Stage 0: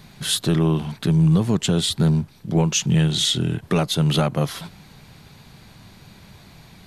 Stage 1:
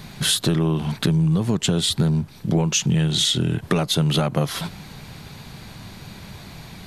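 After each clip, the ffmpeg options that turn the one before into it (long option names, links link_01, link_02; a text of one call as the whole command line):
ffmpeg -i in.wav -af "acompressor=threshold=-24dB:ratio=6,volume=7dB" out.wav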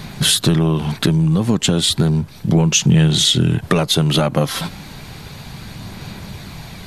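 ffmpeg -i in.wav -af "aphaser=in_gain=1:out_gain=1:delay=3.8:decay=0.23:speed=0.33:type=sinusoidal,volume=5dB" out.wav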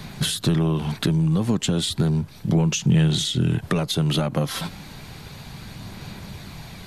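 ffmpeg -i in.wav -filter_complex "[0:a]acrossover=split=300[link_01][link_02];[link_02]acompressor=threshold=-18dB:ratio=6[link_03];[link_01][link_03]amix=inputs=2:normalize=0,volume=-5dB" out.wav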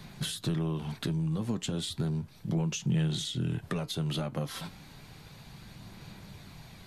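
ffmpeg -i in.wav -af "flanger=delay=5.7:depth=2.7:regen=-73:speed=0.35:shape=sinusoidal,volume=-6.5dB" out.wav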